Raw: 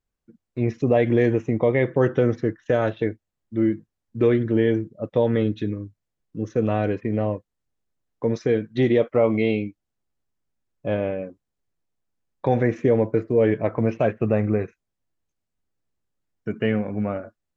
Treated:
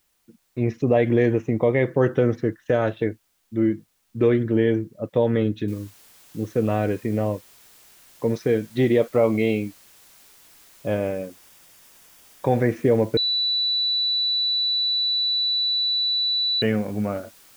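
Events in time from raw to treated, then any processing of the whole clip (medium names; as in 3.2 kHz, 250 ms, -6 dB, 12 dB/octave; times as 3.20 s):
5.68 s: noise floor step -69 dB -52 dB
10.87–12.55 s: band-stop 4.1 kHz, Q 13
13.17–16.62 s: bleep 3.96 kHz -19.5 dBFS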